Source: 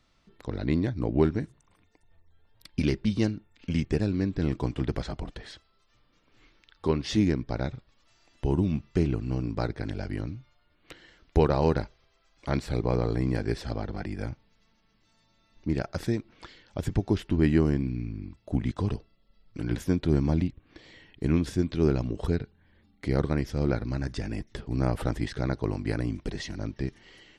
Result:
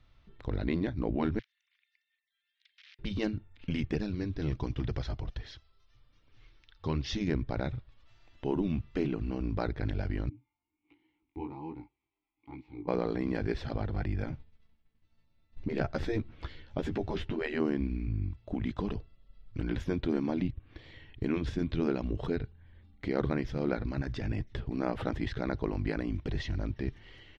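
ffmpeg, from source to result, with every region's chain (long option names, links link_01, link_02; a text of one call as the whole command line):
ffmpeg -i in.wav -filter_complex "[0:a]asettb=1/sr,asplit=3[link_01][link_02][link_03];[link_01]atrim=end=1.394[link_04];[link_02]atrim=start=1.39:end=2.99,asetpts=PTS-STARTPTS,afade=type=in:duration=0.004:curve=qsin,afade=type=out:start_time=1.596:duration=0.004:curve=qsin,acompressor=threshold=-44dB:ratio=4:attack=3.2:release=140:knee=1:detection=peak,aeval=exprs='(mod(126*val(0)+1,2)-1)/126':channel_layout=same,asuperpass=centerf=3200:order=8:qfactor=0.82[link_05];[link_03]atrim=start=2.986[link_06];[link_04][link_05]acrossfade=duration=0.004:curve1=hsin:curve2=qsin[link_07];[link_07][link_06]acrossfade=duration=0.004:curve1=qsin:curve2=hsin,asettb=1/sr,asplit=3[link_08][link_09][link_10];[link_08]atrim=end=3.954[link_11];[link_09]atrim=start=3.95:end=7.28,asetpts=PTS-STARTPTS,afade=type=in:duration=0.004:curve=qsin,afade=type=out:start_time=3.326:duration=0.004:curve=qsin,lowpass=frequency=5800:width_type=q:width=3.1,flanger=delay=0.2:depth=3.1:regen=-58:speed=1.3:shape=triangular[link_12];[link_10]atrim=start=7.276[link_13];[link_11][link_12]acrossfade=duration=0.004:curve1=hsin:curve2=qsin[link_14];[link_14][link_13]acrossfade=duration=0.004:curve1=qsin:curve2=hsin,asettb=1/sr,asplit=3[link_15][link_16][link_17];[link_15]atrim=end=10.294[link_18];[link_16]atrim=start=10.29:end=12.88,asetpts=PTS-STARTPTS,afade=type=in:duration=0.004:curve=qsin,afade=type=out:start_time=2.586:duration=0.004:curve=qsin,flanger=delay=16:depth=6.9:speed=1.3,asplit=3[link_19][link_20][link_21];[link_19]bandpass=frequency=300:width_type=q:width=8,volume=0dB[link_22];[link_20]bandpass=frequency=870:width_type=q:width=8,volume=-6dB[link_23];[link_21]bandpass=frequency=2240:width_type=q:width=8,volume=-9dB[link_24];[link_22][link_23][link_24]amix=inputs=3:normalize=0[link_25];[link_17]atrim=start=12.876[link_26];[link_18][link_25]acrossfade=duration=0.004:curve1=hsin:curve2=qsin[link_27];[link_27][link_26]acrossfade=duration=0.004:curve1=qsin:curve2=hsin,asettb=1/sr,asplit=3[link_28][link_29][link_30];[link_28]atrim=end=14.274[link_31];[link_29]atrim=start=14.27:end=17.54,asetpts=PTS-STARTPTS,afade=type=in:duration=0.004:curve=qsin,afade=type=out:start_time=3.266:duration=0.004:curve=qsin,agate=range=-33dB:threshold=-58dB:ratio=3:release=100:detection=peak,lowshelf=frequency=450:gain=5.5,asplit=2[link_32][link_33];[link_33]adelay=13,volume=-5dB[link_34];[link_32][link_34]amix=inputs=2:normalize=0,atrim=end_sample=144207[link_35];[link_30]atrim=start=17.536[link_36];[link_31][link_35]acrossfade=duration=0.004:curve1=hsin:curve2=qsin[link_37];[link_37][link_36]acrossfade=duration=0.004:curve1=qsin:curve2=hsin,firequalizer=gain_entry='entry(110,0);entry(170,-11);entry(3600,-9);entry(8900,-29)':delay=0.05:min_phase=1,afftfilt=real='re*lt(hypot(re,im),0.158)':imag='im*lt(hypot(re,im),0.158)':win_size=1024:overlap=0.75,equalizer=frequency=4600:width_type=o:width=0.51:gain=-3.5,volume=8.5dB" out.wav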